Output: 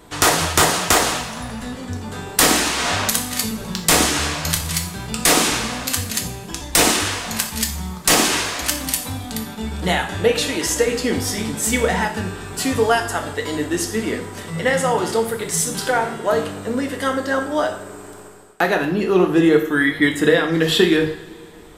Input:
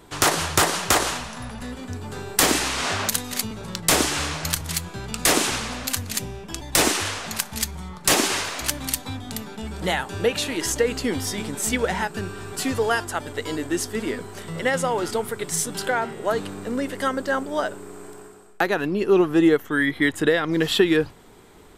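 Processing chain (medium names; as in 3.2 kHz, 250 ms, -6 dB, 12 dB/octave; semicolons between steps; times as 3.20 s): two-slope reverb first 0.52 s, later 2.1 s, from -18 dB, DRR 2.5 dB; trim +2.5 dB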